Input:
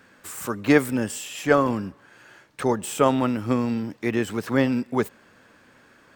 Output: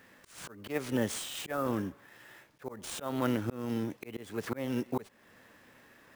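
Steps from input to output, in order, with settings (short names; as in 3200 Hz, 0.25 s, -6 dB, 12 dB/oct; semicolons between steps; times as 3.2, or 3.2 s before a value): formant shift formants +2 st; sample-rate reducer 16000 Hz, jitter 20%; auto swell 0.345 s; gain -4 dB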